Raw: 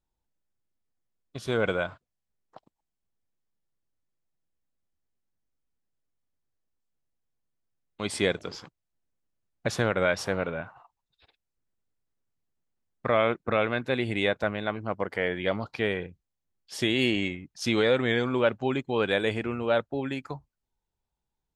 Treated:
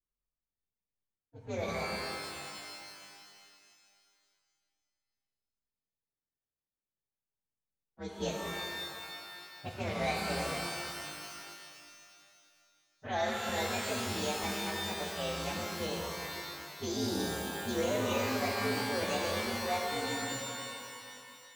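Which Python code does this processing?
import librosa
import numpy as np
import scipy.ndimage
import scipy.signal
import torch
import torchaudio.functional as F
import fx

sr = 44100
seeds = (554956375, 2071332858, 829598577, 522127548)

y = fx.partial_stretch(x, sr, pct=124)
y = fx.env_lowpass(y, sr, base_hz=1300.0, full_db=-23.5)
y = fx.rev_shimmer(y, sr, seeds[0], rt60_s=2.3, semitones=12, shimmer_db=-2, drr_db=0.5)
y = y * 10.0 ** (-8.5 / 20.0)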